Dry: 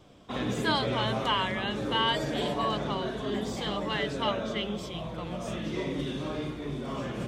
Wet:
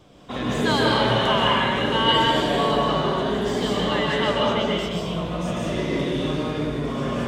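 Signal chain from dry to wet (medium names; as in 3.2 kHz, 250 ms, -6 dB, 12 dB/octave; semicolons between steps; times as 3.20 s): plate-style reverb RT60 1.4 s, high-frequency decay 0.65×, pre-delay 115 ms, DRR -3.5 dB; trim +3.5 dB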